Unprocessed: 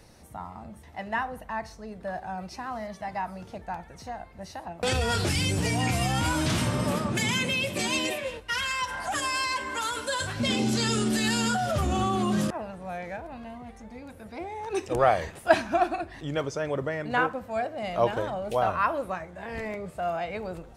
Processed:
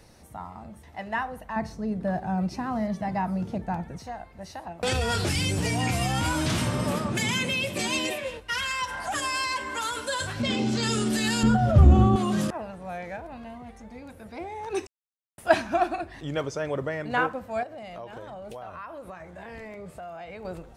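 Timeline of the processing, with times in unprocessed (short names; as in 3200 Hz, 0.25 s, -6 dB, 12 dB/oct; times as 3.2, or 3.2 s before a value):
1.56–3.98 bell 180 Hz +13.5 dB 2.4 oct
10.42–10.83 air absorption 70 m
11.43–12.16 tilt -4 dB/oct
14.87–15.38 mute
17.63–20.45 compressor, threshold -37 dBFS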